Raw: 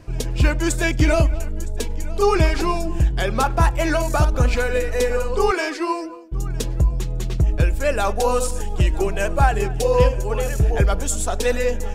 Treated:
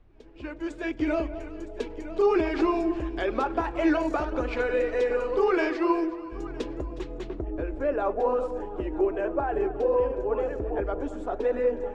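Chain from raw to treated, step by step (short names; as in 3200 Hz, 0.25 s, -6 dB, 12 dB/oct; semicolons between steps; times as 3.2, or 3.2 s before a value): opening faded in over 2.14 s; flange 2 Hz, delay 1.7 ms, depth 3.9 ms, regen -71%; limiter -16.5 dBFS, peak gain reduction 8.5 dB; resonant low shelf 220 Hz -11 dB, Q 3; echo with dull and thin repeats by turns 0.182 s, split 800 Hz, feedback 61%, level -13 dB; added noise brown -57 dBFS; LPF 2900 Hz 12 dB/oct, from 7.3 s 1300 Hz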